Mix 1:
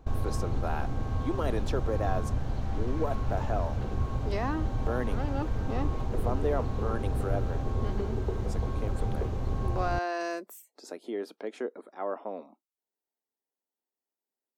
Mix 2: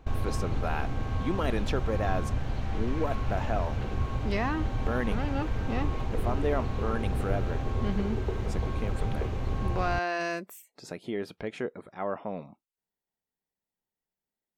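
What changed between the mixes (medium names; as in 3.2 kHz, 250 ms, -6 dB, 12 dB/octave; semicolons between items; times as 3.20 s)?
speech: remove steep high-pass 250 Hz; master: add peaking EQ 2.4 kHz +8 dB 1.3 oct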